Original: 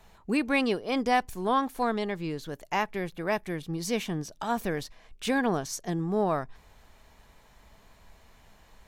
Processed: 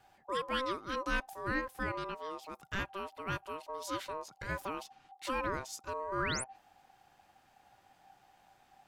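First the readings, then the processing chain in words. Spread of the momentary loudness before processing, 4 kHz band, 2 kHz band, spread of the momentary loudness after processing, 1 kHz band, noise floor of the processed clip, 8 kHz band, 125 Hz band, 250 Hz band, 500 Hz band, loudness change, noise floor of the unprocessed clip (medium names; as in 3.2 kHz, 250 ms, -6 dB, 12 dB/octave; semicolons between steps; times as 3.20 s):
8 LU, -5.0 dB, -4.5 dB, 8 LU, -7.5 dB, -67 dBFS, -5.5 dB, -9.5 dB, -14.0 dB, -9.5 dB, -8.5 dB, -58 dBFS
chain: ring modulator 780 Hz; painted sound rise, 6.18–6.44 s, 1–11 kHz -33 dBFS; trim -6 dB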